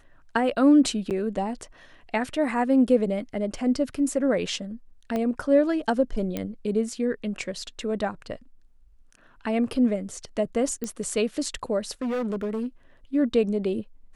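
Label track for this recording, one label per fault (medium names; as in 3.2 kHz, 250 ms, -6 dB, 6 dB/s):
1.100000	1.110000	dropout 8 ms
5.160000	5.160000	pop -16 dBFS
6.370000	6.370000	pop -15 dBFS
10.840000	10.840000	pop -17 dBFS
12.020000	12.660000	clipped -24.5 dBFS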